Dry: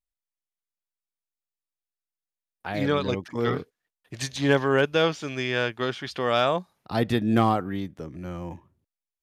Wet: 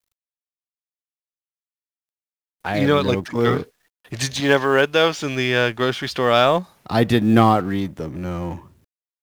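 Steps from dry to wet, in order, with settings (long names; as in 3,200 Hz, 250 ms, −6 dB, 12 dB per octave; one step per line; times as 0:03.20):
mu-law and A-law mismatch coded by mu
0:04.40–0:05.19: low-shelf EQ 240 Hz −10.5 dB
level +6.5 dB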